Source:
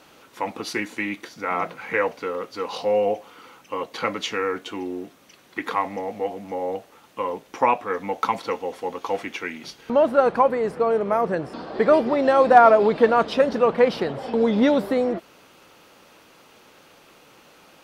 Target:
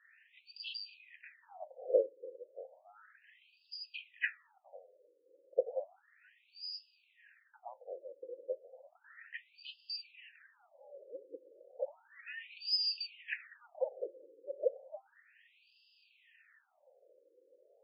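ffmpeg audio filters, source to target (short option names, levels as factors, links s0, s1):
-filter_complex "[0:a]afftfilt=real='real(if(lt(b,272),68*(eq(floor(b/68),0)*1+eq(floor(b/68),1)*2+eq(floor(b/68),2)*3+eq(floor(b/68),3)*0)+mod(b,68),b),0)':imag='imag(if(lt(b,272),68*(eq(floor(b/68),0)*1+eq(floor(b/68),1)*2+eq(floor(b/68),2)*3+eq(floor(b/68),3)*0)+mod(b,68),b),0)':win_size=2048:overlap=0.75,asplit=3[s0][s1][s2];[s0]bandpass=f=530:t=q:w=8,volume=1[s3];[s1]bandpass=f=1840:t=q:w=8,volume=0.501[s4];[s2]bandpass=f=2480:t=q:w=8,volume=0.355[s5];[s3][s4][s5]amix=inputs=3:normalize=0,afftfilt=real='re*between(b*sr/1024,390*pow(3700/390,0.5+0.5*sin(2*PI*0.33*pts/sr))/1.41,390*pow(3700/390,0.5+0.5*sin(2*PI*0.33*pts/sr))*1.41)':imag='im*between(b*sr/1024,390*pow(3700/390,0.5+0.5*sin(2*PI*0.33*pts/sr))/1.41,390*pow(3700/390,0.5+0.5*sin(2*PI*0.33*pts/sr))*1.41)':win_size=1024:overlap=0.75,volume=2.37"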